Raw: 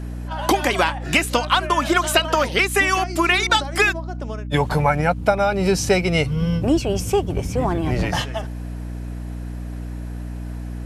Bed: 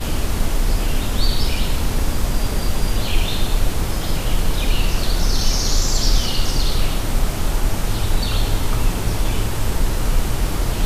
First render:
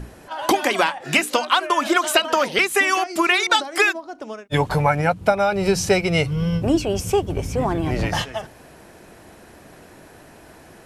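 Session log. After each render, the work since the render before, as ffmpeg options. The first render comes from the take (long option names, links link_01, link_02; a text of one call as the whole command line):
ffmpeg -i in.wav -af "bandreject=frequency=60:width_type=h:width=6,bandreject=frequency=120:width_type=h:width=6,bandreject=frequency=180:width_type=h:width=6,bandreject=frequency=240:width_type=h:width=6,bandreject=frequency=300:width_type=h:width=6" out.wav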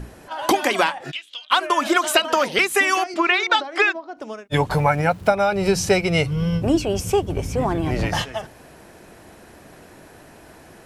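ffmpeg -i in.wav -filter_complex "[0:a]asplit=3[link_01][link_02][link_03];[link_01]afade=type=out:start_time=1.1:duration=0.02[link_04];[link_02]bandpass=frequency=3300:width_type=q:width=8.9,afade=type=in:start_time=1.1:duration=0.02,afade=type=out:start_time=1.5:duration=0.02[link_05];[link_03]afade=type=in:start_time=1.5:duration=0.02[link_06];[link_04][link_05][link_06]amix=inputs=3:normalize=0,asettb=1/sr,asplit=3[link_07][link_08][link_09];[link_07]atrim=end=3.144[link_10];[link_08]atrim=start=3.14:end=4.17,asetpts=PTS-STARTPTS,afade=type=in:duration=0.004:curve=qsin,afade=type=out:start_time=1.026:duration=0.004:curve=qsin,highpass=260,lowpass=3800[link_11];[link_09]atrim=start=4.166[link_12];[link_10][link_11]acrossfade=duration=0.004:curve1=hsin:curve2=qsin[link_13];[link_13][link_12]acrossfade=duration=0.004:curve1=qsin:curve2=hsin,asettb=1/sr,asplit=3[link_14][link_15][link_16];[link_14]atrim=end=4.724[link_17];[link_15]atrim=start=4.72:end=5.3,asetpts=PTS-STARTPTS,afade=type=in:duration=0.004:curve=qsin,afade=type=out:start_time=0.576:duration=0.004:curve=qsin,aeval=exprs='val(0)*gte(abs(val(0)),0.00841)':channel_layout=same[link_18];[link_16]atrim=start=5.296[link_19];[link_17][link_18]acrossfade=duration=0.004:curve1=hsin:curve2=qsin[link_20];[link_20][link_19]acrossfade=duration=0.004:curve1=qsin:curve2=hsin" out.wav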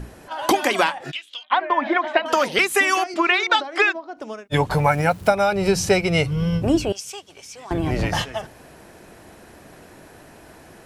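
ffmpeg -i in.wav -filter_complex "[0:a]asettb=1/sr,asplit=3[link_01][link_02][link_03];[link_01]atrim=end=1.434[link_04];[link_02]atrim=start=1.43:end=2.26,asetpts=PTS-STARTPTS,afade=type=in:duration=0.004:curve=qsin,afade=type=out:start_time=0.826:duration=0.004:curve=qsin,highpass=240,equalizer=frequency=250:width_type=q:width=4:gain=4,equalizer=frequency=410:width_type=q:width=4:gain=-6,equalizer=frequency=830:width_type=q:width=4:gain=6,equalizer=frequency=1300:width_type=q:width=4:gain=-9,equalizer=frequency=1900:width_type=q:width=4:gain=5,equalizer=frequency=2800:width_type=q:width=4:gain=-9,lowpass=frequency=2900:width=0.5412,lowpass=frequency=2900:width=1.3066[link_05];[link_03]atrim=start=2.256[link_06];[link_04][link_05]acrossfade=duration=0.004:curve1=hsin:curve2=qsin[link_07];[link_07][link_06]acrossfade=duration=0.004:curve1=qsin:curve2=hsin,asettb=1/sr,asplit=3[link_08][link_09][link_10];[link_08]atrim=end=4.844[link_11];[link_09]atrim=start=4.84:end=5.53,asetpts=PTS-STARTPTS,afade=type=in:duration=0.004:curve=qsin,afade=type=out:start_time=0.686:duration=0.004:curve=qsin,highshelf=frequency=6000:gain=7.5[link_12];[link_10]atrim=start=5.526[link_13];[link_11][link_12]acrossfade=duration=0.004:curve1=hsin:curve2=qsin[link_14];[link_14][link_13]acrossfade=duration=0.004:curve1=qsin:curve2=hsin,asettb=1/sr,asplit=3[link_15][link_16][link_17];[link_15]atrim=end=6.924[link_18];[link_16]atrim=start=6.92:end=7.71,asetpts=PTS-STARTPTS,afade=type=in:duration=0.004:curve=qsin,afade=type=out:start_time=0.786:duration=0.004:curve=qsin,bandpass=frequency=5100:width_type=q:width=0.93[link_19];[link_17]atrim=start=7.706[link_20];[link_18][link_19]acrossfade=duration=0.004:curve1=hsin:curve2=qsin[link_21];[link_21][link_20]acrossfade=duration=0.004:curve1=qsin:curve2=hsin" out.wav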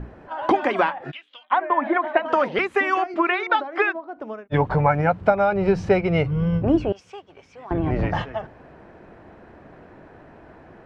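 ffmpeg -i in.wav -af "lowpass=1700" out.wav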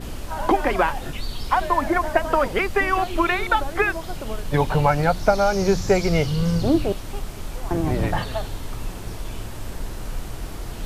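ffmpeg -i in.wav -i bed.wav -filter_complex "[1:a]volume=-12dB[link_01];[0:a][link_01]amix=inputs=2:normalize=0" out.wav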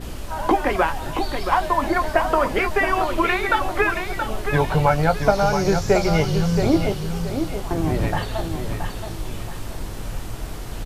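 ffmpeg -i in.wav -filter_complex "[0:a]asplit=2[link_01][link_02];[link_02]adelay=19,volume=-11dB[link_03];[link_01][link_03]amix=inputs=2:normalize=0,aecho=1:1:675|1350|2025|2700:0.447|0.143|0.0457|0.0146" out.wav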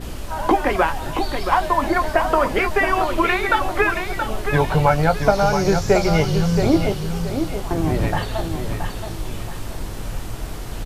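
ffmpeg -i in.wav -af "volume=1.5dB,alimiter=limit=-3dB:level=0:latency=1" out.wav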